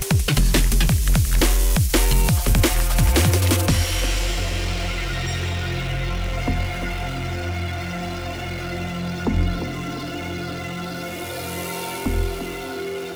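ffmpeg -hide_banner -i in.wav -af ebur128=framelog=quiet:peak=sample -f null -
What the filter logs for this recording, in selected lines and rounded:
Integrated loudness:
  I:         -22.6 LUFS
  Threshold: -32.6 LUFS
Loudness range:
  LRA:         8.3 LU
  Threshold: -42.9 LUFS
  LRA low:   -27.1 LUFS
  LRA high:  -18.8 LUFS
Sample peak:
  Peak:       -7.8 dBFS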